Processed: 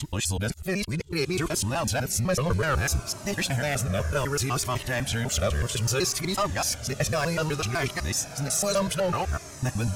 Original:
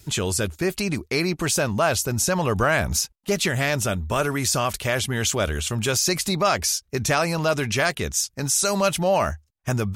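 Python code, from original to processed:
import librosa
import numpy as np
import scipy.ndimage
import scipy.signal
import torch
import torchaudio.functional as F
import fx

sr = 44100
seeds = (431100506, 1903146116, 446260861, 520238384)

y = fx.local_reverse(x, sr, ms=125.0)
y = fx.echo_diffused(y, sr, ms=1319, feedback_pct=41, wet_db=-14)
y = np.clip(10.0 ** (15.5 / 20.0) * y, -1.0, 1.0) / 10.0 ** (15.5 / 20.0)
y = fx.low_shelf(y, sr, hz=180.0, db=4.5)
y = fx.comb_cascade(y, sr, direction='falling', hz=0.63)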